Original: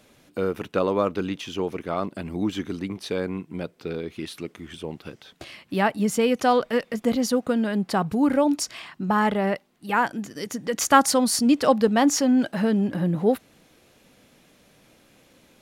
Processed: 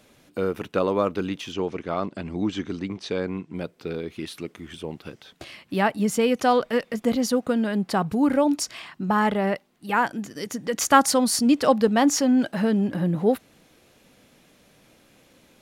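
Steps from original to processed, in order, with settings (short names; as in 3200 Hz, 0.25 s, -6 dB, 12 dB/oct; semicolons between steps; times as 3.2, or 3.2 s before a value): 1.52–3.56 LPF 7500 Hz 24 dB/oct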